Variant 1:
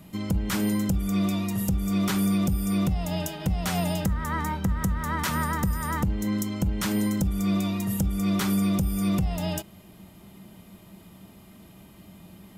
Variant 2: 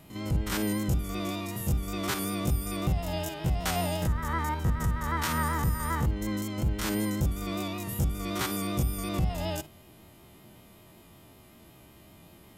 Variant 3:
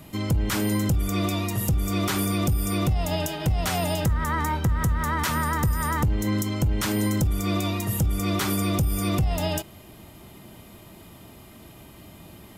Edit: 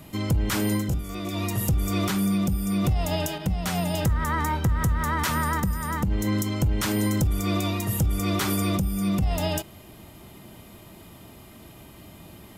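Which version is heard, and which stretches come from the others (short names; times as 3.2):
3
0.85–1.32 from 2, crossfade 0.24 s
2.08–2.84 from 1
3.38–3.94 from 1
5.6–6.11 from 1
8.77–9.22 from 1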